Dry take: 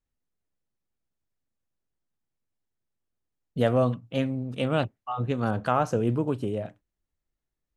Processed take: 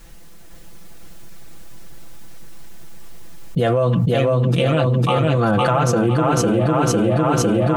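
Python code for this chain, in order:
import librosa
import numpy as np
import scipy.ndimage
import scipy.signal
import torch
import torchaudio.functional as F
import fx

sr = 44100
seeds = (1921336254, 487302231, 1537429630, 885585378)

p1 = x + 0.74 * np.pad(x, (int(5.9 * sr / 1000.0), 0))[:len(x)]
p2 = p1 + fx.echo_feedback(p1, sr, ms=504, feedback_pct=53, wet_db=-3.5, dry=0)
y = fx.env_flatten(p2, sr, amount_pct=100)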